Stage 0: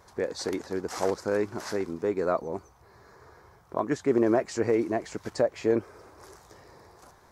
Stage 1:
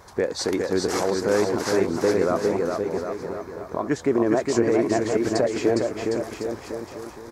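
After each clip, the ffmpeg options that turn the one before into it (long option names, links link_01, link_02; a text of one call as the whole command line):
ffmpeg -i in.wav -af "alimiter=limit=-19.5dB:level=0:latency=1:release=241,aecho=1:1:410|758.5|1055|1307|1521:0.631|0.398|0.251|0.158|0.1,volume=8dB" out.wav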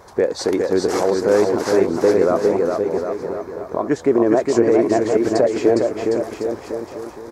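ffmpeg -i in.wav -af "equalizer=frequency=500:width=0.62:gain=6.5" out.wav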